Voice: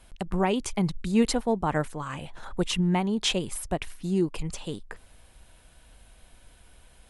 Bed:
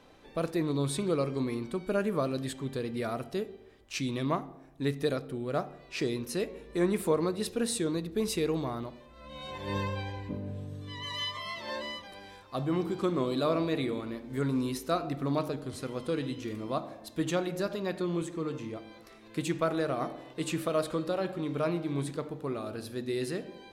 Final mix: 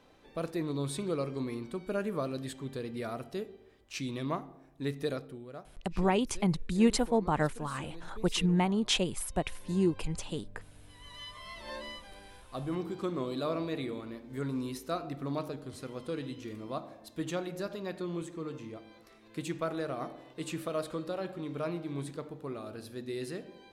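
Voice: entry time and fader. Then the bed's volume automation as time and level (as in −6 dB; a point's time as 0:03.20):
5.65 s, −2.5 dB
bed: 0:05.20 −4 dB
0:05.65 −17.5 dB
0:10.79 −17.5 dB
0:11.69 −5 dB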